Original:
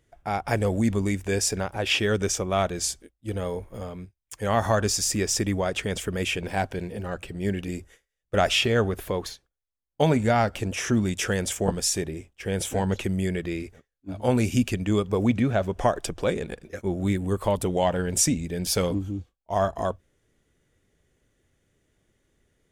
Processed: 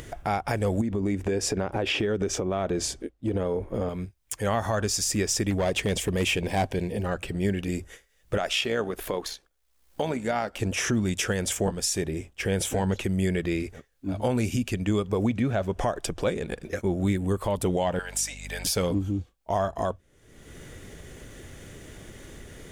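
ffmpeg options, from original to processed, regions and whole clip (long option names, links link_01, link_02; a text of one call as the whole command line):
ffmpeg -i in.wav -filter_complex "[0:a]asettb=1/sr,asplit=3[link_01][link_02][link_03];[link_01]atrim=end=0.814[link_04];[link_02]atrim=start=0.81:end=3.89,asetpts=PTS-STARTPTS,afade=type=in:duration=0.004:curve=qsin,afade=type=out:start_time=3.076:duration=0.004:curve=qsin,lowpass=frequency=3200:poles=1,equalizer=frequency=340:width=0.75:gain=8,acompressor=threshold=-25dB:ratio=12:attack=3.2:release=140:knee=1:detection=peak[link_05];[link_03]atrim=start=3.886[link_06];[link_04][link_05]acrossfade=duration=0.004:curve1=hsin:curve2=qsin[link_07];[link_07][link_06]acrossfade=duration=0.004:curve1=qsin:curve2=hsin,asettb=1/sr,asplit=3[link_08][link_09][link_10];[link_08]atrim=end=5.504[link_11];[link_09]atrim=start=5.5:end=7.05,asetpts=PTS-STARTPTS,afade=type=in:duration=0.004:curve=qsin,afade=type=out:start_time=1.546:duration=0.004:curve=qsin,equalizer=frequency=1400:width=4.4:gain=-11.5,volume=22.5dB,asoftclip=hard,volume=-22.5dB[link_12];[link_10]atrim=start=7.046[link_13];[link_11][link_12]acrossfade=duration=0.004:curve1=hsin:curve2=qsin[link_14];[link_14][link_13]acrossfade=duration=0.004:curve1=qsin:curve2=hsin,asettb=1/sr,asplit=3[link_15][link_16][link_17];[link_15]atrim=end=8.374[link_18];[link_16]atrim=start=8.37:end=10.6,asetpts=PTS-STARTPTS,afade=type=in:duration=0.004:curve=qsin,afade=type=out:start_time=2.226:duration=0.004:curve=qsin,equalizer=frequency=89:width_type=o:width=1.4:gain=-15,tremolo=f=64:d=0.4[link_19];[link_17]atrim=start=10.596[link_20];[link_18][link_19]acrossfade=duration=0.004:curve1=hsin:curve2=qsin[link_21];[link_21][link_20]acrossfade=duration=0.004:curve1=qsin:curve2=hsin,asettb=1/sr,asplit=3[link_22][link_23][link_24];[link_22]atrim=end=17.994[link_25];[link_23]atrim=start=17.99:end=18.65,asetpts=PTS-STARTPTS,afade=type=in:duration=0.004:curve=qsin,afade=type=out:start_time=0.656:duration=0.004:curve=qsin,highpass=frequency=730:width=0.5412,highpass=frequency=730:width=1.3066,acompressor=threshold=-25dB:ratio=3:attack=3.2:release=140:knee=1:detection=peak,aeval=exprs='val(0)+0.00501*(sin(2*PI*50*n/s)+sin(2*PI*2*50*n/s)/2+sin(2*PI*3*50*n/s)/3+sin(2*PI*4*50*n/s)/4+sin(2*PI*5*50*n/s)/5)':channel_layout=same[link_26];[link_24]atrim=start=18.646[link_27];[link_25][link_26]acrossfade=duration=0.004:curve1=hsin:curve2=qsin[link_28];[link_28][link_27]acrossfade=duration=0.004:curve1=qsin:curve2=hsin,acompressor=mode=upward:threshold=-28dB:ratio=2.5,alimiter=limit=-18.5dB:level=0:latency=1:release=293,volume=3dB" out.wav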